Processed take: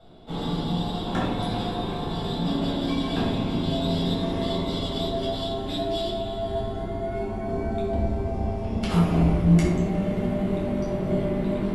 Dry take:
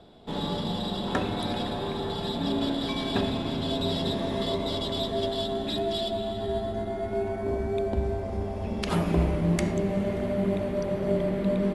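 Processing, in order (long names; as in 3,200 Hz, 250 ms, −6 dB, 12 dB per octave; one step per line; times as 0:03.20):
rectangular room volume 860 cubic metres, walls furnished, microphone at 7.3 metres
level −7.5 dB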